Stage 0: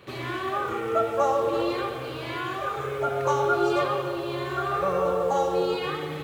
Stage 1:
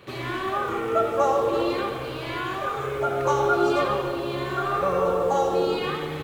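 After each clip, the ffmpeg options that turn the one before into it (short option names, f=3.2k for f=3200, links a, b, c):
-filter_complex "[0:a]asplit=7[a][b][c][d][e][f][g];[b]adelay=83,afreqshift=-69,volume=-14dB[h];[c]adelay=166,afreqshift=-138,volume=-18.9dB[i];[d]adelay=249,afreqshift=-207,volume=-23.8dB[j];[e]adelay=332,afreqshift=-276,volume=-28.6dB[k];[f]adelay=415,afreqshift=-345,volume=-33.5dB[l];[g]adelay=498,afreqshift=-414,volume=-38.4dB[m];[a][h][i][j][k][l][m]amix=inputs=7:normalize=0,volume=1.5dB"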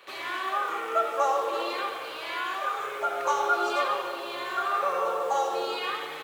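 -af "highpass=730"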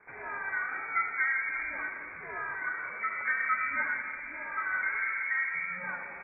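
-af "lowpass=f=2.3k:t=q:w=0.5098,lowpass=f=2.3k:t=q:w=0.6013,lowpass=f=2.3k:t=q:w=0.9,lowpass=f=2.3k:t=q:w=2.563,afreqshift=-2700,volume=-4.5dB"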